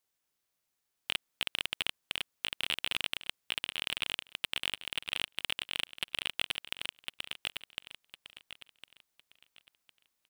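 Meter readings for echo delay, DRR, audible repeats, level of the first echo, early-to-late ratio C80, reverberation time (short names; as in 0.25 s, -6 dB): 1.056 s, none, 3, -3.0 dB, none, none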